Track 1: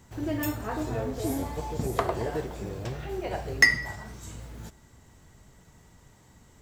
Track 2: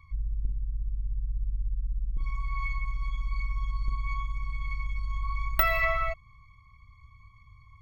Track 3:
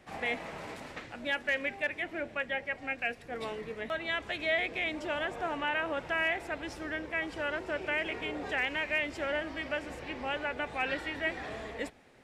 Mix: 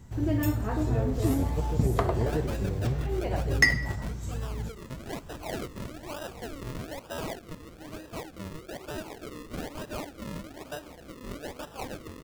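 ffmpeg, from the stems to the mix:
ffmpeg -i stem1.wav -i stem2.wav -i stem3.wav -filter_complex "[0:a]lowshelf=frequency=260:gain=12,volume=-2.5dB[link_01];[2:a]acrusher=samples=39:mix=1:aa=0.000001:lfo=1:lforange=39:lforate=1.1,adelay=1000,volume=-5dB[link_02];[link_01][link_02]amix=inputs=2:normalize=0" out.wav

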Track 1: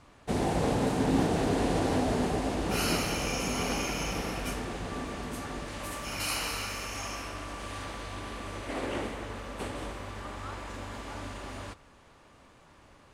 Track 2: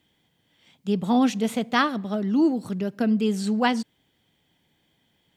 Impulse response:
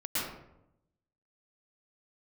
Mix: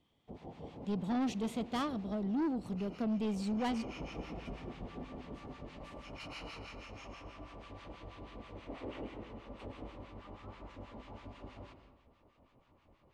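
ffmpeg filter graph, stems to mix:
-filter_complex "[0:a]lowpass=2900,acrossover=split=1000[link_01][link_02];[link_01]aeval=exprs='val(0)*(1-1/2+1/2*cos(2*PI*6.2*n/s))':channel_layout=same[link_03];[link_02]aeval=exprs='val(0)*(1-1/2-1/2*cos(2*PI*6.2*n/s))':channel_layout=same[link_04];[link_03][link_04]amix=inputs=2:normalize=0,volume=-6dB,afade=type=in:start_time=3.19:duration=0.78:silence=0.266073,asplit=2[link_05][link_06];[link_06]volume=-14dB[link_07];[1:a]highshelf=frequency=8000:gain=-12,volume=-8dB[link_08];[2:a]atrim=start_sample=2205[link_09];[link_07][link_09]afir=irnorm=-1:irlink=0[link_10];[link_05][link_08][link_10]amix=inputs=3:normalize=0,equalizer=frequency=1600:width_type=o:width=0.63:gain=-9.5,asoftclip=type=tanh:threshold=-29.5dB"

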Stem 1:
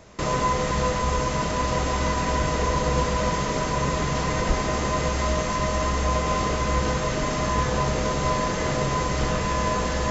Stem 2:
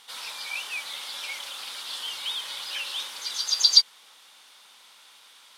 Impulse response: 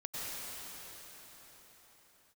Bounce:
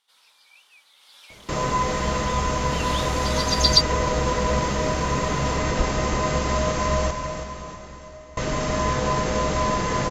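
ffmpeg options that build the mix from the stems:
-filter_complex "[0:a]adelay=1300,volume=-2dB,asplit=3[link_01][link_02][link_03];[link_01]atrim=end=7.11,asetpts=PTS-STARTPTS,afade=type=out:start_time=7.106:duration=0.004:curve=hsin[link_04];[link_02]atrim=start=7.11:end=8.37,asetpts=PTS-STARTPTS,volume=0[link_05];[link_03]atrim=start=8.37,asetpts=PTS-STARTPTS,afade=type=in:duration=0.004:curve=hsin[link_06];[link_04][link_05][link_06]concat=n=3:v=0:a=1,asplit=3[link_07][link_08][link_09];[link_08]volume=-8.5dB[link_10];[link_09]volume=-7.5dB[link_11];[1:a]volume=-1dB,afade=type=in:start_time=0.95:duration=0.23:silence=0.421697,afade=type=in:start_time=2.64:duration=0.27:silence=0.237137[link_12];[2:a]atrim=start_sample=2205[link_13];[link_10][link_13]afir=irnorm=-1:irlink=0[link_14];[link_11]aecho=0:1:324|648|972|1296|1620|1944:1|0.43|0.185|0.0795|0.0342|0.0147[link_15];[link_07][link_12][link_14][link_15]amix=inputs=4:normalize=0,aeval=exprs='0.841*(cos(1*acos(clip(val(0)/0.841,-1,1)))-cos(1*PI/2))+0.00531*(cos(6*acos(clip(val(0)/0.841,-1,1)))-cos(6*PI/2))':channel_layout=same"

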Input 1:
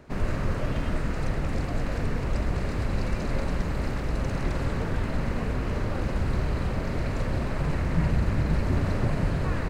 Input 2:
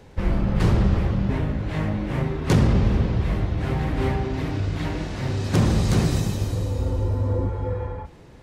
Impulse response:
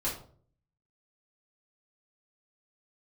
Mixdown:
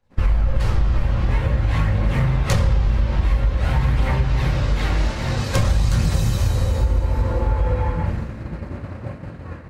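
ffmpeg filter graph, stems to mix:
-filter_complex "[0:a]acrossover=split=3000[link_01][link_02];[link_02]acompressor=threshold=-55dB:ratio=4:attack=1:release=60[link_03];[link_01][link_03]amix=inputs=2:normalize=0,highpass=frequency=59:width=0.5412,highpass=frequency=59:width=1.3066,volume=-2dB,asplit=2[link_04][link_05];[link_05]volume=-9.5dB[link_06];[1:a]acontrast=80,aphaser=in_gain=1:out_gain=1:delay=3.4:decay=0.33:speed=0.49:type=triangular,equalizer=frequency=280:width=0.96:gain=-14.5,volume=-3dB,asplit=2[link_07][link_08];[link_08]volume=-4.5dB[link_09];[2:a]atrim=start_sample=2205[link_10];[link_06][link_09]amix=inputs=2:normalize=0[link_11];[link_11][link_10]afir=irnorm=-1:irlink=0[link_12];[link_04][link_07][link_12]amix=inputs=3:normalize=0,agate=range=-33dB:threshold=-18dB:ratio=3:detection=peak,acompressor=threshold=-14dB:ratio=6"

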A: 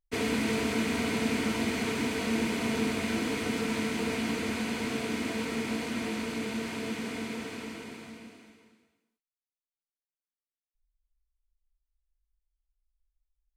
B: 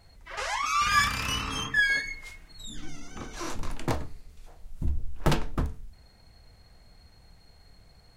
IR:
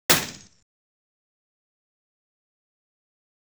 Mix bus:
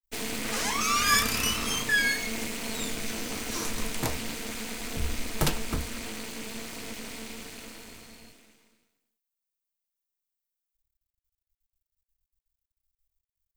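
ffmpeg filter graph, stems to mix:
-filter_complex "[0:a]equalizer=frequency=11000:width=5.5:gain=-12.5,aeval=exprs='max(val(0),0)':channel_layout=same,volume=-2.5dB[link_01];[1:a]adelay=150,volume=-3.5dB[link_02];[link_01][link_02]amix=inputs=2:normalize=0,aemphasis=mode=production:type=75kf"

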